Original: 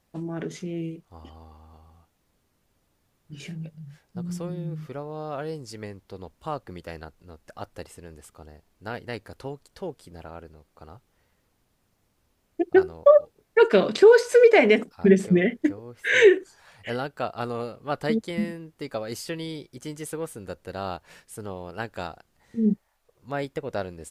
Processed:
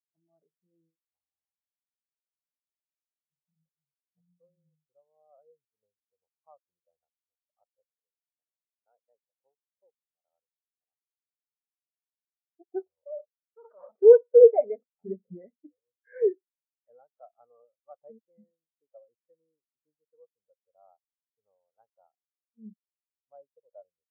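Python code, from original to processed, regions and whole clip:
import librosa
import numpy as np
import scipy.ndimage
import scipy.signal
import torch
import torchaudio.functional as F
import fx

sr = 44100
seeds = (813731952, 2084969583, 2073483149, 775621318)

y = fx.chain(x, sr, fx.highpass(hz=180.0, slope=6),
    fx.clip_hard(threshold_db=-23.0), at=(7.81, 10.3))
y = fx.chain(y, sr, fx.over_compress(threshold_db=-22.0, ratio=-1.0),
    fx.transformer_sat(knee_hz=3000.0), at=(12.86, 13.97))
y = scipy.signal.sosfilt(scipy.signal.butter(6, 2500.0, 'lowpass', fs=sr, output='sos'), y)
y = fx.band_shelf(y, sr, hz=820.0, db=10.5, octaves=1.7)
y = fx.spectral_expand(y, sr, expansion=2.5)
y = y * librosa.db_to_amplitude(-7.0)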